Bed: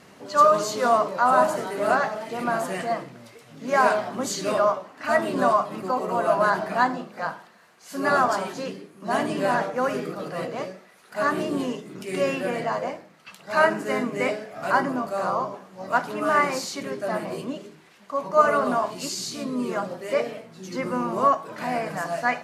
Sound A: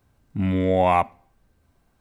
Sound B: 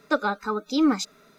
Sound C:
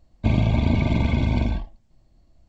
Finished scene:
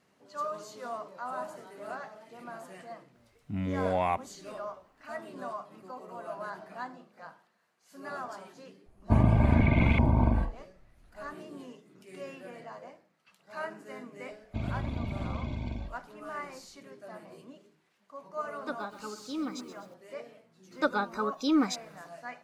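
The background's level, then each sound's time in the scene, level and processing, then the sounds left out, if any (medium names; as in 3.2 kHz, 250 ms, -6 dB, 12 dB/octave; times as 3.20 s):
bed -18.5 dB
3.14 s: add A -10 dB
8.86 s: add C -3 dB + LFO low-pass saw up 0.89 Hz 880–2600 Hz
14.30 s: add C -14.5 dB
18.56 s: add B -14 dB + bit-crushed delay 126 ms, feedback 55%, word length 7-bit, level -12 dB
20.71 s: add B -4.5 dB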